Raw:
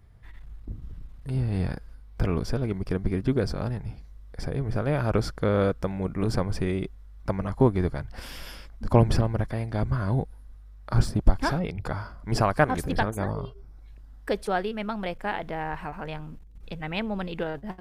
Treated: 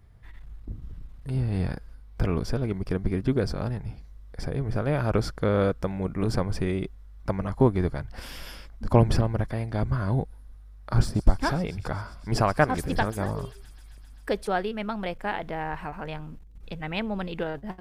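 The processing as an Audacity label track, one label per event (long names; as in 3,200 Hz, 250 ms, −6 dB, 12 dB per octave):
10.210000	14.360000	delay with a high-pass on its return 131 ms, feedback 81%, high-pass 3,600 Hz, level −14 dB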